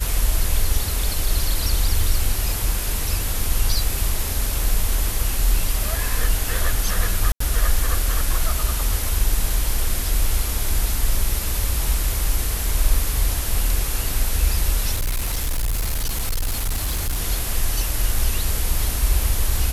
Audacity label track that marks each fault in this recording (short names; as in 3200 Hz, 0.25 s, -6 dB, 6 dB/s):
7.320000	7.400000	gap 84 ms
14.950000	17.210000	clipped -18.5 dBFS